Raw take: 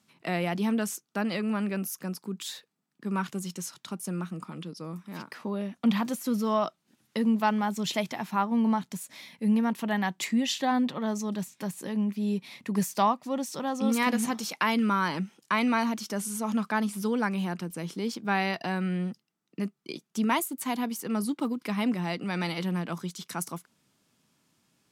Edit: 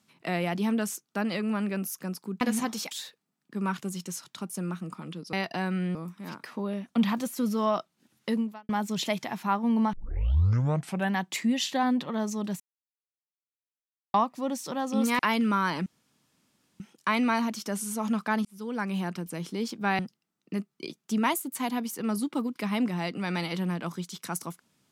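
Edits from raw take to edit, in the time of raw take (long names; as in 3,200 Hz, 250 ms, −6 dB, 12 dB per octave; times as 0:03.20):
0:07.21–0:07.57: fade out quadratic
0:08.81: tape start 1.21 s
0:11.48–0:13.02: silence
0:14.07–0:14.57: move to 0:02.41
0:15.24: splice in room tone 0.94 s
0:16.89–0:17.41: fade in
0:18.43–0:19.05: move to 0:04.83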